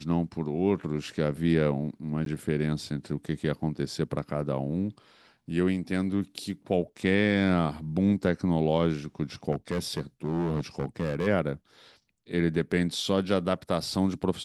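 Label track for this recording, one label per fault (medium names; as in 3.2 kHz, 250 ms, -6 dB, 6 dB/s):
2.250000	2.260000	dropout
9.510000	11.280000	clipped -23.5 dBFS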